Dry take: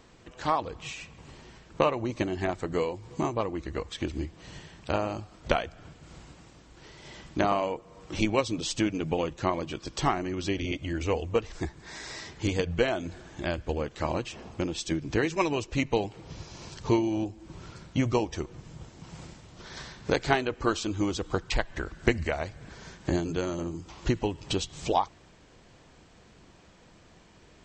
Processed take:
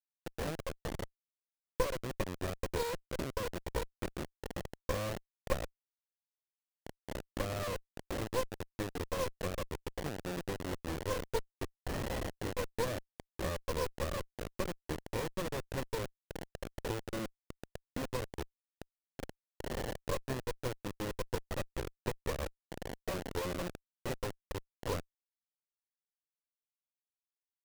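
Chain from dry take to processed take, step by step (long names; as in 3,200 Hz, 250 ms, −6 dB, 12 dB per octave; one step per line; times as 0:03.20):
high-pass filter 420 Hz 6 dB per octave
downward compressor 10 to 1, threshold −40 dBFS, peak gain reduction 21 dB
formant resonators in series e
pitch vibrato 2 Hz 78 cents
bit reduction 9 bits
windowed peak hold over 33 samples
level +18 dB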